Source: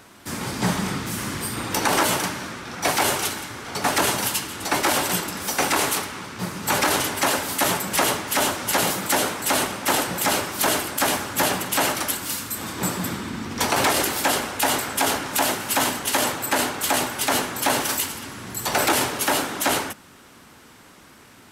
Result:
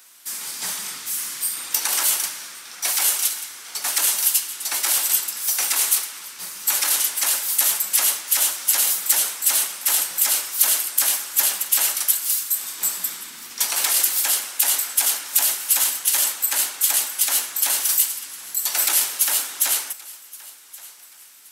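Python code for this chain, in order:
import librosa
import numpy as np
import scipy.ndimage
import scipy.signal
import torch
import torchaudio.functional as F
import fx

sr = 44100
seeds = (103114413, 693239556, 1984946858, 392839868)

y = np.diff(x, prepend=0.0)
y = fx.echo_thinned(y, sr, ms=1123, feedback_pct=34, hz=420.0, wet_db=-20.5)
y = y * 10.0 ** (5.5 / 20.0)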